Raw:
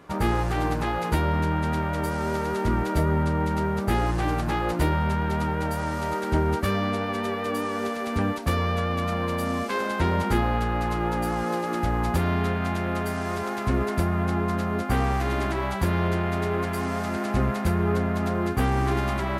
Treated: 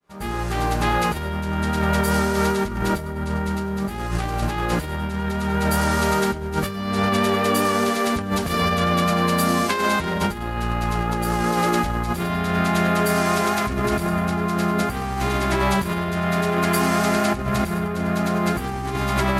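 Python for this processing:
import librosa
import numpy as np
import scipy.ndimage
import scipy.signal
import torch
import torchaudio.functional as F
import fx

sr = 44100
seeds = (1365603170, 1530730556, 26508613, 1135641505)

y = fx.fade_in_head(x, sr, length_s=1.21)
y = fx.high_shelf(y, sr, hz=2500.0, db=8.0)
y = fx.echo_feedback(y, sr, ms=98, feedback_pct=47, wet_db=-13.0)
y = fx.room_shoebox(y, sr, seeds[0], volume_m3=2400.0, walls='furnished', distance_m=1.3)
y = fx.over_compress(y, sr, threshold_db=-25.0, ratio=-0.5)
y = y * librosa.db_to_amplitude(4.0)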